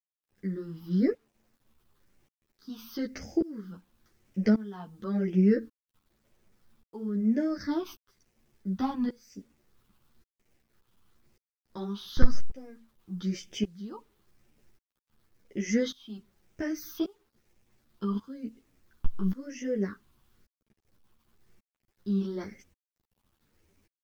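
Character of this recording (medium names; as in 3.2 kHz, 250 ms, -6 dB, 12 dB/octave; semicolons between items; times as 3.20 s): phasing stages 6, 0.98 Hz, lowest notch 520–1100 Hz; tremolo saw up 0.88 Hz, depth 95%; a quantiser's noise floor 12-bit, dither none; a shimmering, thickened sound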